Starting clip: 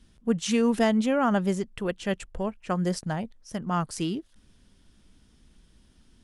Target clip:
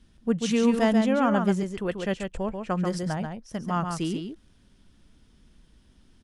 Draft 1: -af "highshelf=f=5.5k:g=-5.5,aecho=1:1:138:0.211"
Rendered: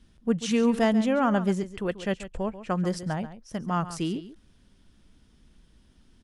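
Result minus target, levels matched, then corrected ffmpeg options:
echo-to-direct -8 dB
-af "highshelf=f=5.5k:g=-5.5,aecho=1:1:138:0.531"

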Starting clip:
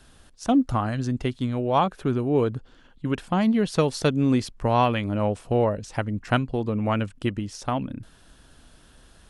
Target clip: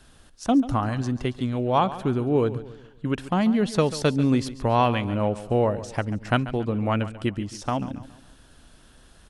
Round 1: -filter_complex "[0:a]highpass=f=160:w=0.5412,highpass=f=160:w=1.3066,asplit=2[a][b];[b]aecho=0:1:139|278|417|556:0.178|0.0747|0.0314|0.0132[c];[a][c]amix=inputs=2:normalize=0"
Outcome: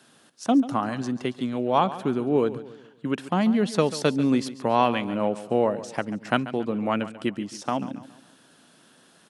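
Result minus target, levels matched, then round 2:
125 Hz band -7.0 dB
-filter_complex "[0:a]asplit=2[a][b];[b]aecho=0:1:139|278|417|556:0.178|0.0747|0.0314|0.0132[c];[a][c]amix=inputs=2:normalize=0"

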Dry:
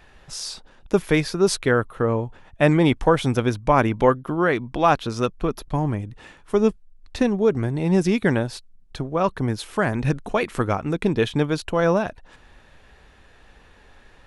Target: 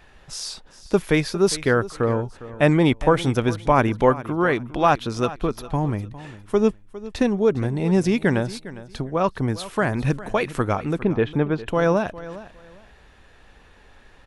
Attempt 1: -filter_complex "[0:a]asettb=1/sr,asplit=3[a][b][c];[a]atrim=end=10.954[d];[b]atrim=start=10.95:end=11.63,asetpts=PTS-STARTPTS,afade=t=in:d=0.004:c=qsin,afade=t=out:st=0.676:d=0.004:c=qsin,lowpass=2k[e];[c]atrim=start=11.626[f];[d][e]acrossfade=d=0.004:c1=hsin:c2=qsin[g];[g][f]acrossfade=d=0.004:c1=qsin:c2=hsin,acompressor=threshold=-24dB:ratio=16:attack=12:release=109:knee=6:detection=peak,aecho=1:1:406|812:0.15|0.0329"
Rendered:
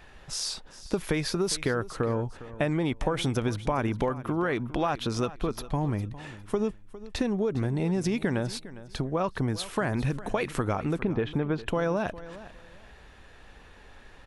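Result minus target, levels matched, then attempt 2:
compressor: peak gain reduction +13.5 dB
-filter_complex "[0:a]asettb=1/sr,asplit=3[a][b][c];[a]atrim=end=10.954[d];[b]atrim=start=10.95:end=11.63,asetpts=PTS-STARTPTS,afade=t=in:d=0.004:c=qsin,afade=t=out:st=0.676:d=0.004:c=qsin,lowpass=2k[e];[c]atrim=start=11.626[f];[d][e]acrossfade=d=0.004:c1=hsin:c2=qsin[g];[g][f]acrossfade=d=0.004:c1=qsin:c2=hsin,aecho=1:1:406|812:0.15|0.0329"

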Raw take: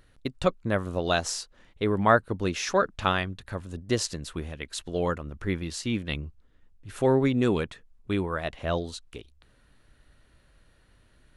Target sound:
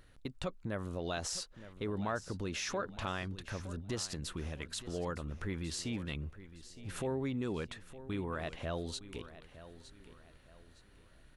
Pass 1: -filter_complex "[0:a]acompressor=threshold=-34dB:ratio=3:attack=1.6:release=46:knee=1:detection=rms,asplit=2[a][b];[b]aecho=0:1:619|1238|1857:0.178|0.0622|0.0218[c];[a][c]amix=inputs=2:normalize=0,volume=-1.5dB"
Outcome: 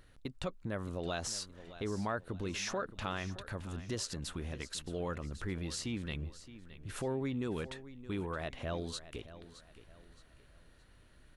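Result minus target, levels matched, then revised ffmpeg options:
echo 0.294 s early
-filter_complex "[0:a]acompressor=threshold=-34dB:ratio=3:attack=1.6:release=46:knee=1:detection=rms,asplit=2[a][b];[b]aecho=0:1:913|1826|2739:0.178|0.0622|0.0218[c];[a][c]amix=inputs=2:normalize=0,volume=-1.5dB"

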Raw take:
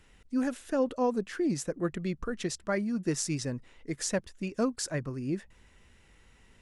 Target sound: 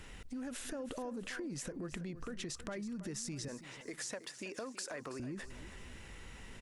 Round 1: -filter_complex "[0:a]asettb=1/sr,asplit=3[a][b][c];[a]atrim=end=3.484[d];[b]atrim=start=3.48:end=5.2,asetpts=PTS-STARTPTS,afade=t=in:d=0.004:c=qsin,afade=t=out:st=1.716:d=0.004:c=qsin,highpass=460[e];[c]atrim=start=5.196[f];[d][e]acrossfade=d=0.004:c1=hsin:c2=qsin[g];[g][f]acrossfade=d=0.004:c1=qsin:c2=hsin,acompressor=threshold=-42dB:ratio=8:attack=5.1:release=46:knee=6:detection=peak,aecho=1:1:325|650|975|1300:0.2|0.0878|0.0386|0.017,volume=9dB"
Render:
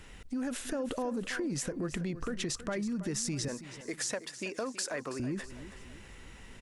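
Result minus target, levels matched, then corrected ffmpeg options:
compressor: peak gain reduction -8 dB
-filter_complex "[0:a]asettb=1/sr,asplit=3[a][b][c];[a]atrim=end=3.484[d];[b]atrim=start=3.48:end=5.2,asetpts=PTS-STARTPTS,afade=t=in:d=0.004:c=qsin,afade=t=out:st=1.716:d=0.004:c=qsin,highpass=460[e];[c]atrim=start=5.196[f];[d][e]acrossfade=d=0.004:c1=hsin:c2=qsin[g];[g][f]acrossfade=d=0.004:c1=qsin:c2=hsin,acompressor=threshold=-51dB:ratio=8:attack=5.1:release=46:knee=6:detection=peak,aecho=1:1:325|650|975|1300:0.2|0.0878|0.0386|0.017,volume=9dB"

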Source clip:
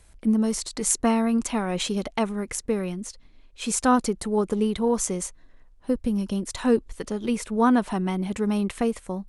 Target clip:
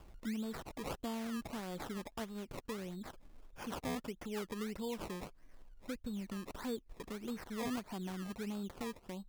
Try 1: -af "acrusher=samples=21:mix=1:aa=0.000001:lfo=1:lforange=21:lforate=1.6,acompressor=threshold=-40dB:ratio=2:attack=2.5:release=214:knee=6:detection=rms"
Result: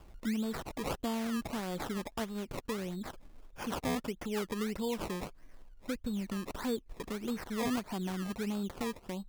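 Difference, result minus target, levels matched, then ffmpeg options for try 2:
compressor: peak gain reduction -6 dB
-af "acrusher=samples=21:mix=1:aa=0.000001:lfo=1:lforange=21:lforate=1.6,acompressor=threshold=-51.5dB:ratio=2:attack=2.5:release=214:knee=6:detection=rms"

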